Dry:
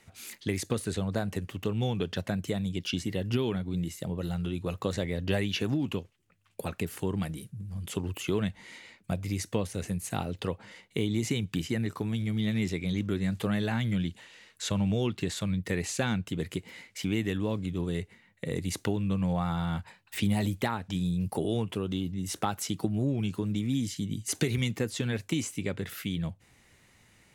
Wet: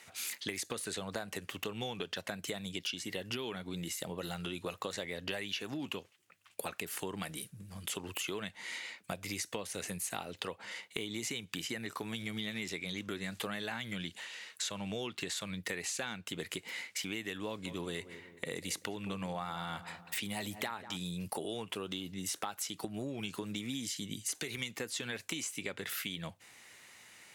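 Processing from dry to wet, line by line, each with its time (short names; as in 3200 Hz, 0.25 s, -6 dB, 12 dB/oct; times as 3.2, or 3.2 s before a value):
17.46–20.97 darkening echo 0.192 s, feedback 49%, low-pass 1300 Hz, level -15.5 dB
whole clip: HPF 970 Hz 6 dB/oct; compressor 6:1, threshold -43 dBFS; gain +7.5 dB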